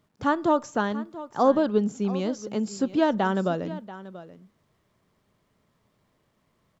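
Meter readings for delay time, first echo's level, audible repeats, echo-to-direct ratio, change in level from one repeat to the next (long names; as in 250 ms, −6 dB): 685 ms, −16.0 dB, 1, −16.0 dB, repeats not evenly spaced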